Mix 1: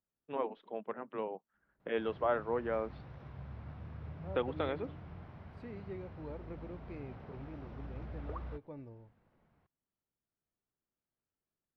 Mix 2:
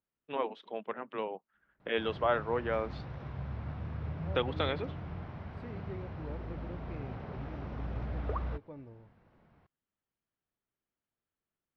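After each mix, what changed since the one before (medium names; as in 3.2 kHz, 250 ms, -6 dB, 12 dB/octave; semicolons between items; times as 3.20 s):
first voice: remove tape spacing loss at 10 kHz 34 dB; background +7.5 dB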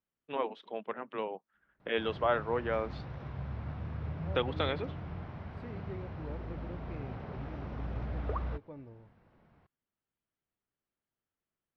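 no change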